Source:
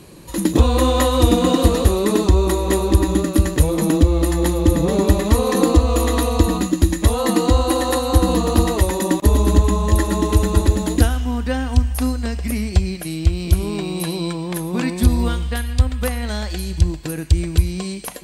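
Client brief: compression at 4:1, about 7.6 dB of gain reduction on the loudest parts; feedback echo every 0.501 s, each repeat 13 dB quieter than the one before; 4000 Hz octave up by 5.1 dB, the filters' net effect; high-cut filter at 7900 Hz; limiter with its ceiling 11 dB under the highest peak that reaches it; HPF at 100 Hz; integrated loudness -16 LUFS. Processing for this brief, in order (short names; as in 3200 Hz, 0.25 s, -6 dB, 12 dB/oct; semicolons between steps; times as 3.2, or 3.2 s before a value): HPF 100 Hz; LPF 7900 Hz; bell 4000 Hz +6 dB; compressor 4:1, threshold -21 dBFS; limiter -19.5 dBFS; feedback echo 0.501 s, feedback 22%, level -13 dB; gain +12.5 dB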